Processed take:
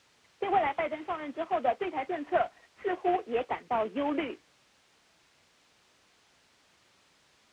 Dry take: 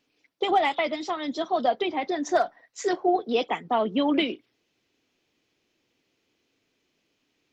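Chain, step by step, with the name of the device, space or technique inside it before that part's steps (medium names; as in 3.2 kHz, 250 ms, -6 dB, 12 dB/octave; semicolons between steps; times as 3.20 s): army field radio (band-pass 350–2900 Hz; CVSD coder 16 kbps; white noise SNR 25 dB); high-pass 51 Hz; distance through air 110 m; trim -3 dB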